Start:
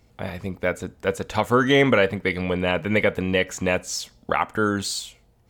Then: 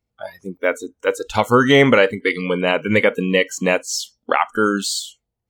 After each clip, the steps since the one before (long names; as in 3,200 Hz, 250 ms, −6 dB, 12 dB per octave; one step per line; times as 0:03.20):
noise reduction from a noise print of the clip's start 26 dB
level +5 dB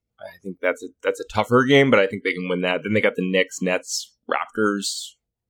rotating-speaker cabinet horn 5.5 Hz
level −1.5 dB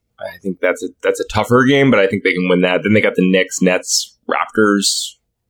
boost into a limiter +12 dB
level −1 dB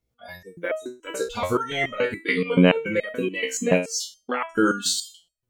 step-sequenced resonator 7 Hz 65–630 Hz
level +2 dB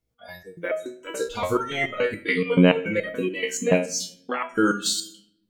convolution reverb RT60 0.70 s, pre-delay 6 ms, DRR 11 dB
level −1 dB